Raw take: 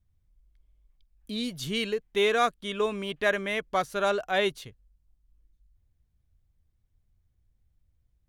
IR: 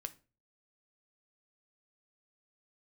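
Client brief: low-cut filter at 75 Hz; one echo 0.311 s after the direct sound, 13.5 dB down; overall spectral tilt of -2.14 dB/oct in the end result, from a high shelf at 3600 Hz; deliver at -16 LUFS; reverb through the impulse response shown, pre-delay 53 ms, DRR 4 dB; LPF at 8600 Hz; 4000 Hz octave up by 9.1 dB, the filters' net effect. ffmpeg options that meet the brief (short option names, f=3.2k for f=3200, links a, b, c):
-filter_complex "[0:a]highpass=75,lowpass=8.6k,highshelf=f=3.6k:g=8,equalizer=f=4k:t=o:g=6.5,aecho=1:1:311:0.211,asplit=2[a][b];[1:a]atrim=start_sample=2205,adelay=53[c];[b][c]afir=irnorm=-1:irlink=0,volume=-1dB[d];[a][d]amix=inputs=2:normalize=0,volume=7dB"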